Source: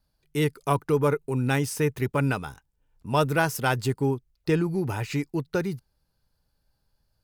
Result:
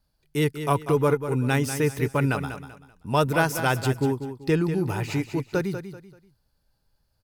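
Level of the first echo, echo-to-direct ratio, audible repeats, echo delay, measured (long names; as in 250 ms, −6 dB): −10.0 dB, −9.5 dB, 3, 193 ms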